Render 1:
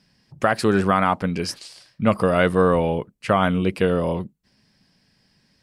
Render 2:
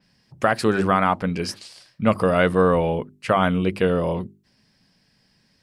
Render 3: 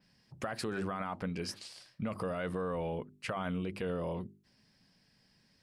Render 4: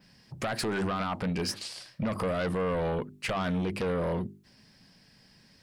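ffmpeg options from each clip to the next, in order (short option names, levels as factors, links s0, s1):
-af "bandreject=f=50:t=h:w=6,bandreject=f=100:t=h:w=6,bandreject=f=150:t=h:w=6,bandreject=f=200:t=h:w=6,bandreject=f=250:t=h:w=6,bandreject=f=300:t=h:w=6,bandreject=f=350:t=h:w=6,bandreject=f=400:t=h:w=6,adynamicequalizer=threshold=0.0112:dfrequency=4400:dqfactor=0.7:tfrequency=4400:tqfactor=0.7:attack=5:release=100:ratio=0.375:range=2:mode=cutabove:tftype=highshelf"
-af "alimiter=limit=0.2:level=0:latency=1:release=17,acompressor=threshold=0.0316:ratio=2.5,volume=0.501"
-af "aeval=exprs='0.0794*sin(PI/2*2.82*val(0)/0.0794)':c=same,volume=0.668"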